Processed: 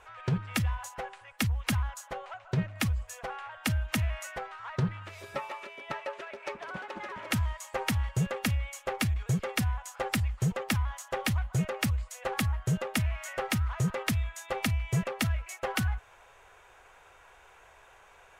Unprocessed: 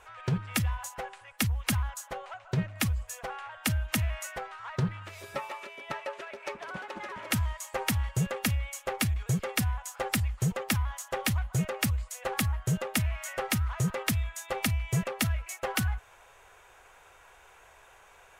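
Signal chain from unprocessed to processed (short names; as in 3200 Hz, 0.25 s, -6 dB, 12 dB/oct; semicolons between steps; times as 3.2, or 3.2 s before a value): high shelf 7200 Hz -7.5 dB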